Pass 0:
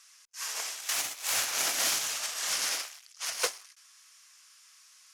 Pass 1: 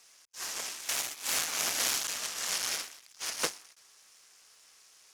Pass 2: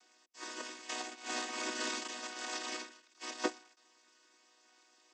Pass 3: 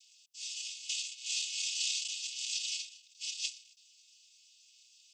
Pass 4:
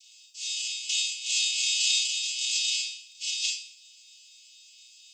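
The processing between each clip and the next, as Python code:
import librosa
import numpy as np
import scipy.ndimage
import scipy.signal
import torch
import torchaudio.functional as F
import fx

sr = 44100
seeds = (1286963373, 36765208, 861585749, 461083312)

y1 = fx.cycle_switch(x, sr, every=3, mode='muted')
y2 = fx.chord_vocoder(y1, sr, chord='major triad', root=59)
y2 = F.gain(torch.from_numpy(y2), -5.0).numpy()
y3 = scipy.signal.sosfilt(scipy.signal.butter(12, 2600.0, 'highpass', fs=sr, output='sos'), y2)
y3 = F.gain(torch.from_numpy(y3), 7.5).numpy()
y4 = fx.rev_schroeder(y3, sr, rt60_s=0.4, comb_ms=27, drr_db=0.0)
y4 = F.gain(torch.from_numpy(y4), 5.5).numpy()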